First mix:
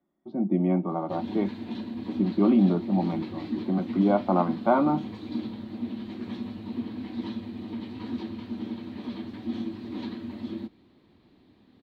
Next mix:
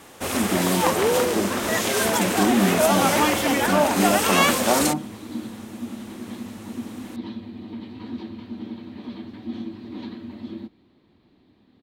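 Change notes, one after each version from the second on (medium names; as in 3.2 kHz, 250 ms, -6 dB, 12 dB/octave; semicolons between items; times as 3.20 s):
first sound: unmuted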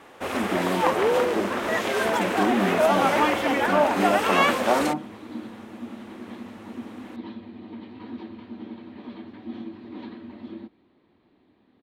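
master: add tone controls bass -8 dB, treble -15 dB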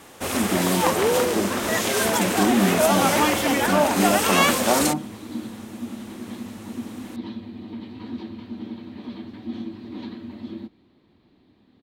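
master: add tone controls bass +8 dB, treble +15 dB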